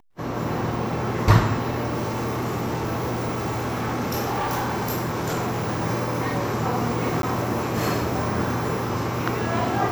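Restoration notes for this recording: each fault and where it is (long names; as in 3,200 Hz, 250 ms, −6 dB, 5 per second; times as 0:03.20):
0:01.87–0:05.82: clipping −21.5 dBFS
0:07.22–0:07.23: drop-out 12 ms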